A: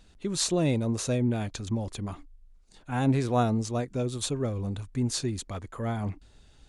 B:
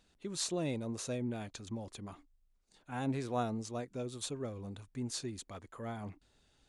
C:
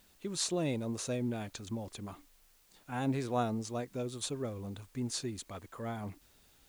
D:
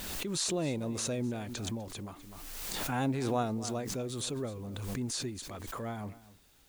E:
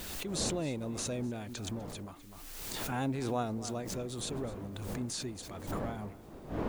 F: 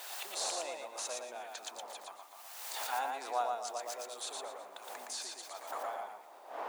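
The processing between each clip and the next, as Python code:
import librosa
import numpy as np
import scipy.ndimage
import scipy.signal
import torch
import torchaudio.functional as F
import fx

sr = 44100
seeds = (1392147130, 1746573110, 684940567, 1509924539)

y1 = fx.low_shelf(x, sr, hz=110.0, db=-11.0)
y1 = y1 * librosa.db_to_amplitude(-8.5)
y2 = fx.dmg_noise_colour(y1, sr, seeds[0], colour='white', level_db=-70.0)
y2 = y2 * librosa.db_to_amplitude(2.5)
y3 = y2 + 10.0 ** (-18.0 / 20.0) * np.pad(y2, (int(250 * sr / 1000.0), 0))[:len(y2)]
y3 = fx.pre_swell(y3, sr, db_per_s=26.0)
y4 = fx.dmg_wind(y3, sr, seeds[1], corner_hz=440.0, level_db=-42.0)
y4 = y4 * librosa.db_to_amplitude(-2.5)
y5 = fx.ladder_highpass(y4, sr, hz=640.0, resonance_pct=45)
y5 = fx.echo_feedback(y5, sr, ms=116, feedback_pct=23, wet_db=-3.5)
y5 = y5 * librosa.db_to_amplitude(6.5)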